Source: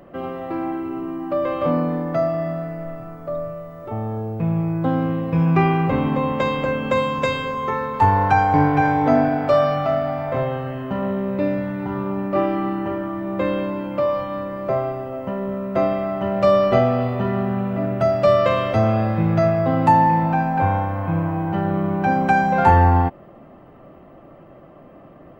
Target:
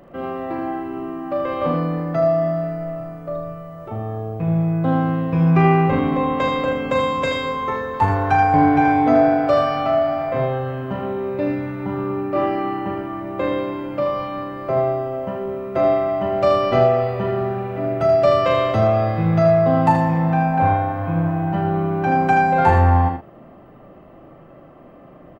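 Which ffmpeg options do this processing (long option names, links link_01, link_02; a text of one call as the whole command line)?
ffmpeg -i in.wav -filter_complex "[0:a]asplit=2[link_01][link_02];[link_02]adelay=38,volume=-7.5dB[link_03];[link_01][link_03]amix=inputs=2:normalize=0,aecho=1:1:79:0.501,volume=-1dB" out.wav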